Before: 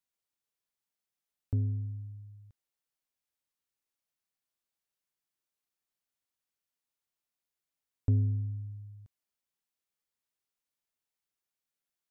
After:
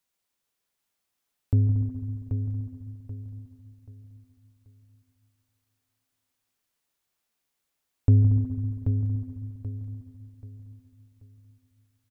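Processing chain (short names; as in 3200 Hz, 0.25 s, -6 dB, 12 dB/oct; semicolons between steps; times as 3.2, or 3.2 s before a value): feedback echo 0.783 s, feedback 34%, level -7 dB; on a send at -6 dB: reverb RT60 3.1 s, pre-delay 0.142 s; on the sum: gain +8.5 dB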